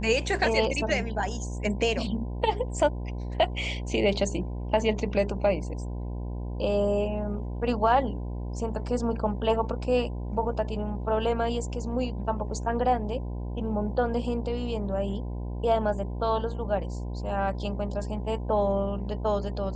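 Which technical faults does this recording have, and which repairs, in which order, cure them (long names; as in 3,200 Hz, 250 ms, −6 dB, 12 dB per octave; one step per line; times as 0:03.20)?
mains buzz 60 Hz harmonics 17 −33 dBFS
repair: hum removal 60 Hz, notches 17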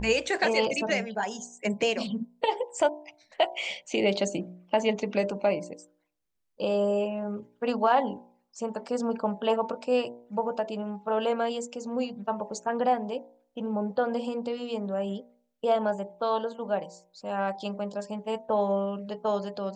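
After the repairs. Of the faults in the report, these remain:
none of them is left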